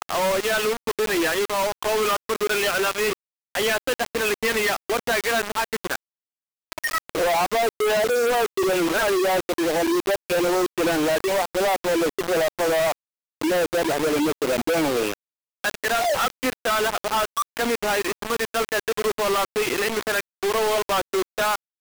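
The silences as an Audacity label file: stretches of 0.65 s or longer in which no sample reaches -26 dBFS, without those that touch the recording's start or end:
5.960000	6.720000	silence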